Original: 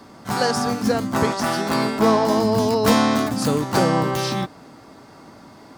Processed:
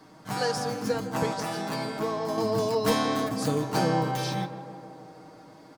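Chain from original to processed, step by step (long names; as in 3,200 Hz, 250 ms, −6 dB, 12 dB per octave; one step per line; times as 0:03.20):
comb filter 6.4 ms, depth 69%
0:01.33–0:02.38: downward compressor 2.5 to 1, threshold −20 dBFS, peak gain reduction 7 dB
on a send: tape delay 161 ms, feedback 83%, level −11.5 dB, low-pass 1,700 Hz
on the sum: level −9 dB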